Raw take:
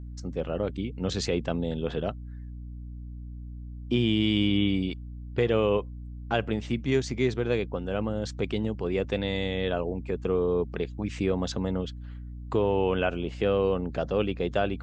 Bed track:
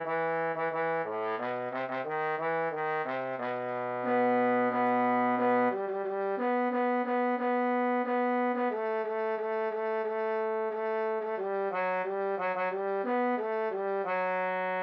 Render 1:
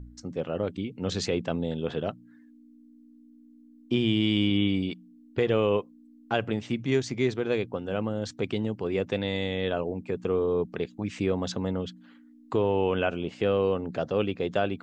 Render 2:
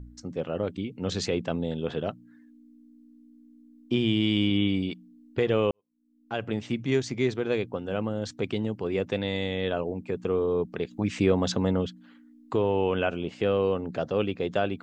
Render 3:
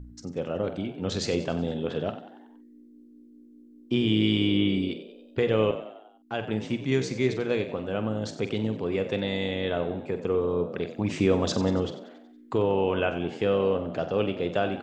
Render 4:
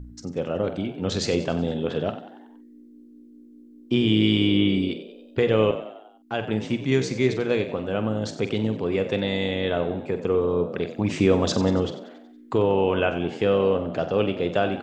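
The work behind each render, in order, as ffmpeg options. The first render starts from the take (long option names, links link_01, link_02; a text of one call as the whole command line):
ffmpeg -i in.wav -af "bandreject=frequency=60:width_type=h:width=4,bandreject=frequency=120:width_type=h:width=4,bandreject=frequency=180:width_type=h:width=4" out.wav
ffmpeg -i in.wav -filter_complex "[0:a]asplit=4[link_01][link_02][link_03][link_04];[link_01]atrim=end=5.71,asetpts=PTS-STARTPTS,afade=type=out:start_time=5.706:duration=0.004:curve=hsin[link_05];[link_02]atrim=start=5.71:end=10.912,asetpts=PTS-STARTPTS,afade=type=in:duration=0.86:curve=qua[link_06];[link_03]atrim=start=10.908:end=11.872,asetpts=PTS-STARTPTS,volume=4.5dB[link_07];[link_04]atrim=start=11.868[link_08];[link_05][link_06]concat=n=2:v=0:a=1[link_09];[link_09][link_07]acrossfade=duration=0.004:curve1=hsin:curve2=hsin[link_10];[link_10][link_08]acrossfade=duration=0.004:curve1=hsin:curve2=hsin" out.wav
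ffmpeg -i in.wav -filter_complex "[0:a]asplit=2[link_01][link_02];[link_02]adelay=46,volume=-11dB[link_03];[link_01][link_03]amix=inputs=2:normalize=0,asplit=2[link_04][link_05];[link_05]asplit=5[link_06][link_07][link_08][link_09][link_10];[link_06]adelay=93,afreqshift=55,volume=-13dB[link_11];[link_07]adelay=186,afreqshift=110,volume=-18.7dB[link_12];[link_08]adelay=279,afreqshift=165,volume=-24.4dB[link_13];[link_09]adelay=372,afreqshift=220,volume=-30dB[link_14];[link_10]adelay=465,afreqshift=275,volume=-35.7dB[link_15];[link_11][link_12][link_13][link_14][link_15]amix=inputs=5:normalize=0[link_16];[link_04][link_16]amix=inputs=2:normalize=0" out.wav
ffmpeg -i in.wav -af "volume=3.5dB" out.wav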